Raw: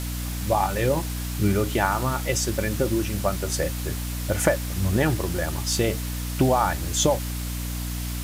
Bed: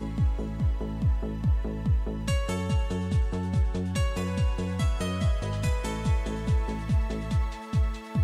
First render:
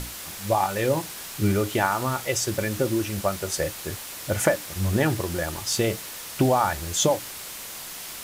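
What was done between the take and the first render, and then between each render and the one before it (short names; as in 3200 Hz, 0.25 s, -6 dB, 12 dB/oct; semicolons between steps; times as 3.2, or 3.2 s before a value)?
notches 60/120/180/240/300 Hz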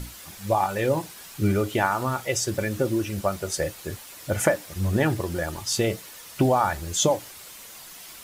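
denoiser 8 dB, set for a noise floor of -38 dBFS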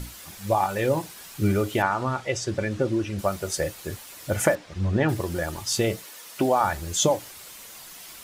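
1.82–3.19 air absorption 84 m; 4.55–5.09 air absorption 130 m; 6.04–6.61 HPF 240 Hz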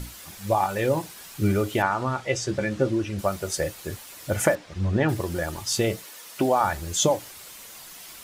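2.27–2.91 doubler 15 ms -7 dB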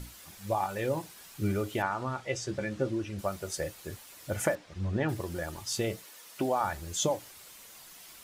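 gain -7.5 dB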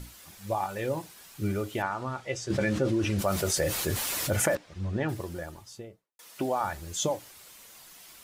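2.5–4.57 fast leveller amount 70%; 5.13–6.19 studio fade out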